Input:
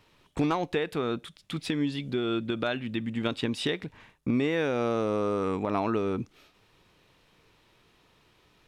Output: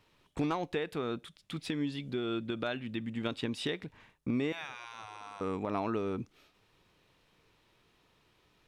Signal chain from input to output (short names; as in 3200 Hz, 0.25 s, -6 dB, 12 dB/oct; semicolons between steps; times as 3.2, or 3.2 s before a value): 4.52–5.41 spectral gate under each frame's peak -15 dB weak; gain -5.5 dB